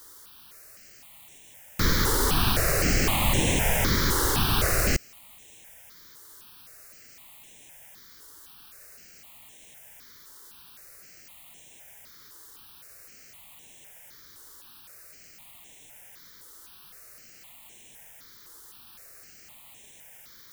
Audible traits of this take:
a quantiser's noise floor 8 bits, dither triangular
notches that jump at a steady rate 3.9 Hz 680–4,700 Hz

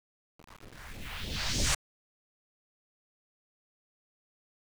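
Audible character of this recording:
phaser sweep stages 2, 3.3 Hz, lowest notch 260–1,300 Hz
a quantiser's noise floor 8 bits, dither none
IMA ADPCM

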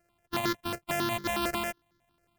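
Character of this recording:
a buzz of ramps at a fixed pitch in blocks of 128 samples
notches that jump at a steady rate 11 Hz 970–2,600 Hz

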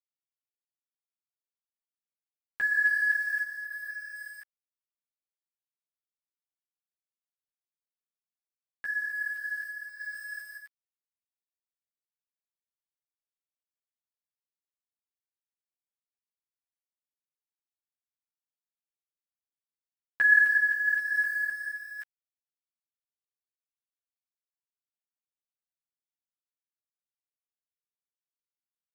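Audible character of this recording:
a quantiser's noise floor 8 bits, dither none
sample-and-hold tremolo
a shimmering, thickened sound

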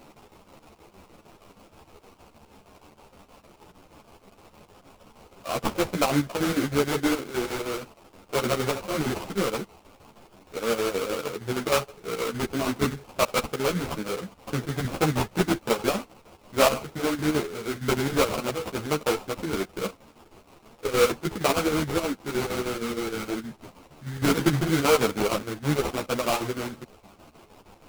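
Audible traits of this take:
a quantiser's noise floor 8 bits, dither triangular
chopped level 6.4 Hz, depth 60%, duty 70%
aliases and images of a low sample rate 1,800 Hz, jitter 20%
a shimmering, thickened sound

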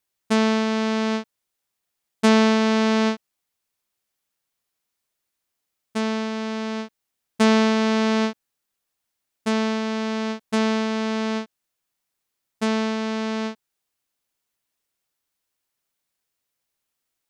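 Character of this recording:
background noise floor −81 dBFS
spectral slope −3.5 dB per octave

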